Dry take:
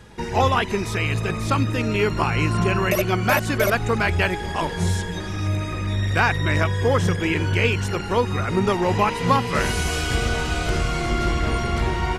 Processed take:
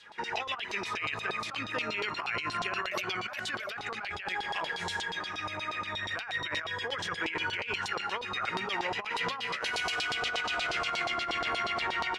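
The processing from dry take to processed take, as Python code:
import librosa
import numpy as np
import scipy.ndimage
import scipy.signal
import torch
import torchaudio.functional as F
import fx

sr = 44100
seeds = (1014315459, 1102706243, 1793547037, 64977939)

y = fx.filter_lfo_bandpass(x, sr, shape='saw_down', hz=8.4, low_hz=800.0, high_hz=4400.0, q=2.7)
y = fx.dynamic_eq(y, sr, hz=950.0, q=3.7, threshold_db=-42.0, ratio=4.0, max_db=-6)
y = fx.over_compress(y, sr, threshold_db=-36.0, ratio=-1.0)
y = F.gain(torch.from_numpy(y), 2.5).numpy()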